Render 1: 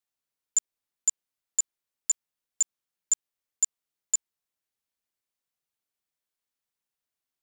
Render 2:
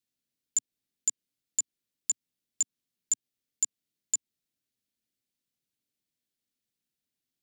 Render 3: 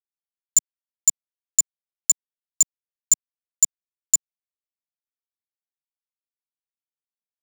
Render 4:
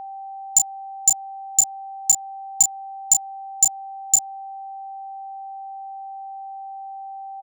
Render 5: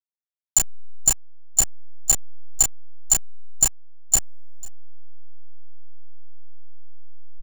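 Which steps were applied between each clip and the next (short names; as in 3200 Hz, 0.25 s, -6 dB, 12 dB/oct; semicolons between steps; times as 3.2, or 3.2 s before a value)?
graphic EQ 125/250/1000/4000 Hz +6/+10/-12/+3 dB; compressor 3:1, threshold -25 dBFS, peak gain reduction 5.5 dB
companded quantiser 4-bit; tone controls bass +13 dB, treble +11 dB
doubler 31 ms -6 dB; whine 780 Hz -33 dBFS; gain +1 dB
level-crossing sampler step -14.5 dBFS; echo 0.495 s -22.5 dB; gain -1 dB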